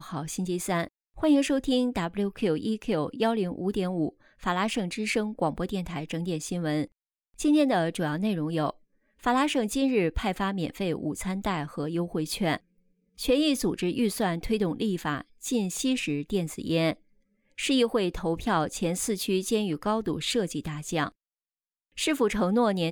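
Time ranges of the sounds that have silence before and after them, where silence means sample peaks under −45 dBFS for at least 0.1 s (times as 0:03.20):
0:01.16–0:04.10
0:04.42–0:06.86
0:07.39–0:08.71
0:09.23–0:12.57
0:13.18–0:15.22
0:15.42–0:16.94
0:17.58–0:21.09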